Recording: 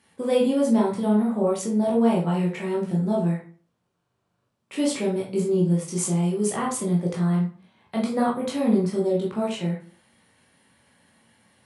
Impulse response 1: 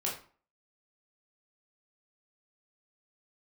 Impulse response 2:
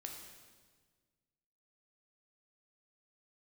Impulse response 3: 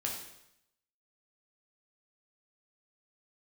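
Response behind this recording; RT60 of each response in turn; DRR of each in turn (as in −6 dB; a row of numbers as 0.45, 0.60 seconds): 1; 0.40, 1.5, 0.80 seconds; −4.0, 1.5, −1.5 decibels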